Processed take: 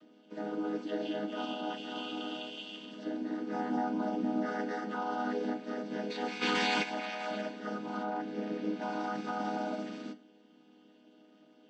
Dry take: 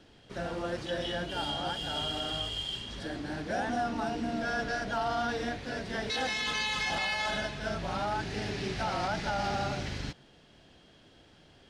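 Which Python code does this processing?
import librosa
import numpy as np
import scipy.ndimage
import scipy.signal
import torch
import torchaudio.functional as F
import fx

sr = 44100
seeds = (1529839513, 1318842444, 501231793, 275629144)

y = fx.chord_vocoder(x, sr, chord='minor triad', root=56)
y = fx.lowpass(y, sr, hz=3000.0, slope=6, at=(8.03, 8.82))
y = fx.rev_fdn(y, sr, rt60_s=0.31, lf_ratio=1.0, hf_ratio=0.85, size_ms=20.0, drr_db=9.0)
y = fx.env_flatten(y, sr, amount_pct=100, at=(6.41, 6.82), fade=0.02)
y = y * librosa.db_to_amplitude(-3.0)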